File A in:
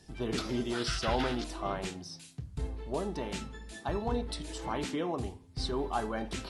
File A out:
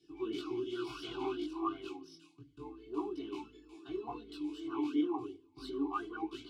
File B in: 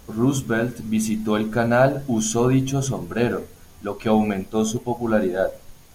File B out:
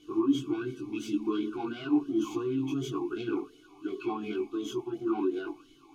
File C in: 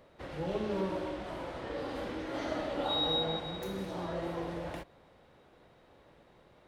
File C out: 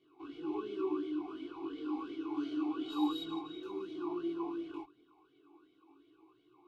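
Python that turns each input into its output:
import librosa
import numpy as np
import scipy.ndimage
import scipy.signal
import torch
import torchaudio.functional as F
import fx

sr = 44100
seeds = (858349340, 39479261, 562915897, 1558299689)

p1 = fx.tracing_dist(x, sr, depth_ms=0.092)
p2 = fx.peak_eq(p1, sr, hz=1400.0, db=3.0, octaves=2.7)
p3 = p2 + 0.94 * np.pad(p2, (int(2.7 * sr / 1000.0), 0))[:len(p2)]
p4 = fx.dynamic_eq(p3, sr, hz=510.0, q=3.8, threshold_db=-37.0, ratio=4.0, max_db=-7)
p5 = fx.over_compress(p4, sr, threshold_db=-22.0, ratio=-0.5)
p6 = p4 + (p5 * librosa.db_to_amplitude(0.0))
p7 = 10.0 ** (-12.0 / 20.0) * np.tanh(p6 / 10.0 ** (-12.0 / 20.0))
p8 = fx.fixed_phaser(p7, sr, hz=370.0, stages=8)
p9 = fx.chorus_voices(p8, sr, voices=2, hz=0.3, base_ms=20, depth_ms=4.0, mix_pct=50)
p10 = fx.quant_companded(p9, sr, bits=8)
p11 = fx.vowel_sweep(p10, sr, vowels='i-u', hz=2.8)
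y = p11 * librosa.db_to_amplitude(5.0)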